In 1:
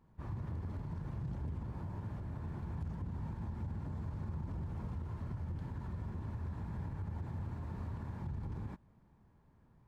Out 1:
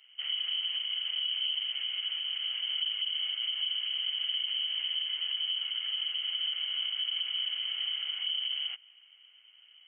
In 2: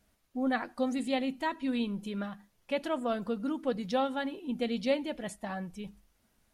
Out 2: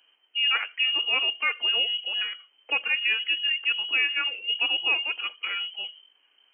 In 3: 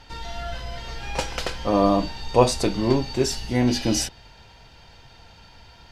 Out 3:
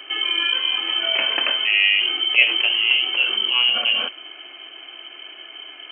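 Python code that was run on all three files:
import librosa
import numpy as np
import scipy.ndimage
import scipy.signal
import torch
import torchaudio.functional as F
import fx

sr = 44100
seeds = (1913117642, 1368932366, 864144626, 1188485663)

p1 = fx.freq_invert(x, sr, carrier_hz=3100)
p2 = fx.over_compress(p1, sr, threshold_db=-29.0, ratio=-1.0)
p3 = p1 + (p2 * 10.0 ** (0.5 / 20.0))
y = scipy.signal.sosfilt(scipy.signal.butter(4, 300.0, 'highpass', fs=sr, output='sos'), p3)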